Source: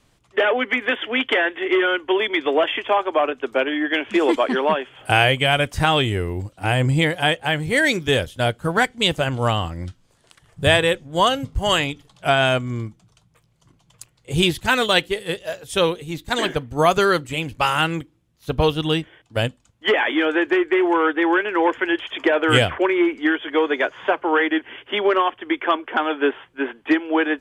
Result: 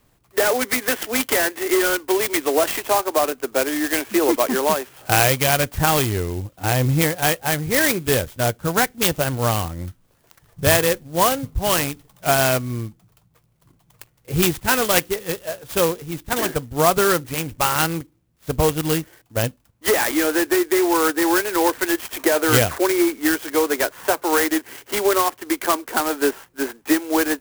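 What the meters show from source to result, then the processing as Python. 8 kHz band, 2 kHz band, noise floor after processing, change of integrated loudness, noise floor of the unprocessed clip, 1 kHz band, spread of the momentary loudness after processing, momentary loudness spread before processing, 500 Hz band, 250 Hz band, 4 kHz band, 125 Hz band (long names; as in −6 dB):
+13.5 dB, −2.5 dB, −61 dBFS, +0.5 dB, −61 dBFS, −0.5 dB, 9 LU, 9 LU, 0.0 dB, 0.0 dB, −3.5 dB, 0.0 dB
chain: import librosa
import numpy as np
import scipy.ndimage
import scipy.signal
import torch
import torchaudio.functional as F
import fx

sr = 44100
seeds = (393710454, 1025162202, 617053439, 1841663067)

y = fx.clock_jitter(x, sr, seeds[0], jitter_ms=0.072)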